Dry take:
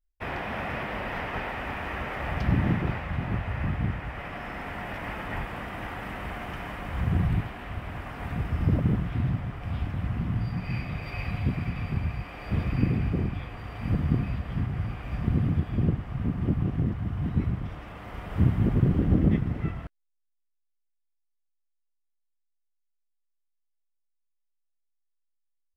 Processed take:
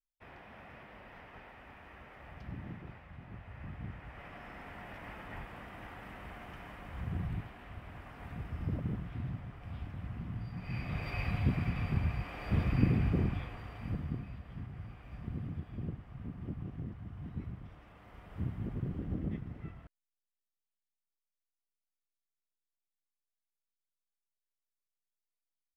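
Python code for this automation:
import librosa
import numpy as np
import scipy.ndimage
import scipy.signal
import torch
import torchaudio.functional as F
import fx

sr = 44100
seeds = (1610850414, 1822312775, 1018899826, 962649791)

y = fx.gain(x, sr, db=fx.line((3.24, -20.0), (4.23, -12.0), (10.52, -12.0), (10.98, -3.0), (13.33, -3.0), (14.25, -15.0)))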